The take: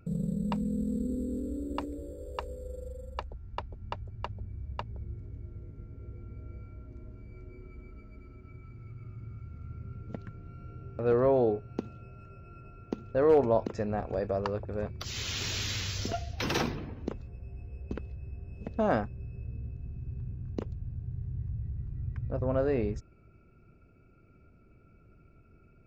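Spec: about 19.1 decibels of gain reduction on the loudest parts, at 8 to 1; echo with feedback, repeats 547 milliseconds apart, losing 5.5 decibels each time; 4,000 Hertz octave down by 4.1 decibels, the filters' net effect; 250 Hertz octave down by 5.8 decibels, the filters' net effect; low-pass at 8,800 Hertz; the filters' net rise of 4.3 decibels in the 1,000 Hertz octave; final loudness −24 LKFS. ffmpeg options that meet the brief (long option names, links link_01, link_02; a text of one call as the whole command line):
ffmpeg -i in.wav -af "lowpass=8800,equalizer=frequency=250:width_type=o:gain=-8,equalizer=frequency=1000:width_type=o:gain=6.5,equalizer=frequency=4000:width_type=o:gain=-5.5,acompressor=threshold=-40dB:ratio=8,aecho=1:1:547|1094|1641|2188|2735|3282|3829:0.531|0.281|0.149|0.079|0.0419|0.0222|0.0118,volume=20.5dB" out.wav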